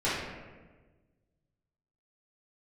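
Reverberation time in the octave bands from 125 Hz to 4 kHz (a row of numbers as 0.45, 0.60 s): 1.9, 1.6, 1.5, 1.2, 1.1, 0.80 s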